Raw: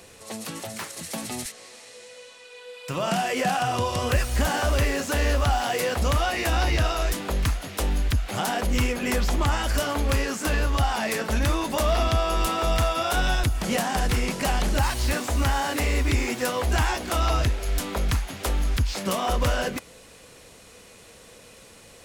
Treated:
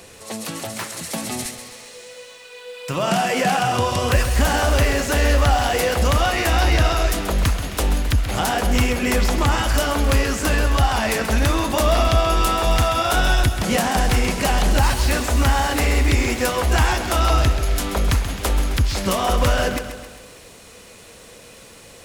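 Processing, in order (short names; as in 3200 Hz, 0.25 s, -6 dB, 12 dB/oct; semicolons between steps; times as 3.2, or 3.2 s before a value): lo-fi delay 0.132 s, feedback 55%, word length 9-bit, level -10 dB; gain +5 dB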